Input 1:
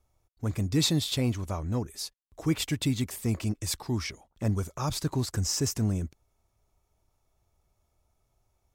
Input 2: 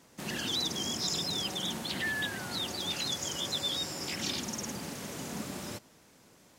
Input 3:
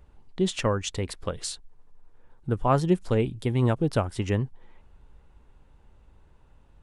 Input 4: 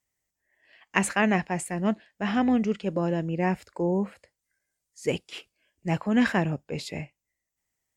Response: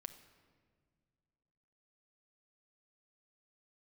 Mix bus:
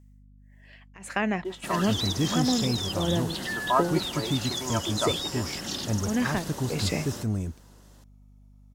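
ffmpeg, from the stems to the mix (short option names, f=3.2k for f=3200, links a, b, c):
-filter_complex "[0:a]deesser=0.85,adelay=1450,volume=-7dB[a];[1:a]equalizer=f=2.3k:w=7.4:g=-13.5,adelay=1450,volume=-4.5dB[b];[2:a]bandpass=f=1.1k:t=q:w=1.5:csg=0,aecho=1:1:3.1:0.93,adelay=1050,volume=-6dB[c];[3:a]acompressor=threshold=-31dB:ratio=12,tremolo=f=1.6:d=0.97,volume=3dB[d];[a][b][c][d]amix=inputs=4:normalize=0,dynaudnorm=f=280:g=5:m=6dB,aeval=exprs='val(0)+0.00251*(sin(2*PI*50*n/s)+sin(2*PI*2*50*n/s)/2+sin(2*PI*3*50*n/s)/3+sin(2*PI*4*50*n/s)/4+sin(2*PI*5*50*n/s)/5)':c=same"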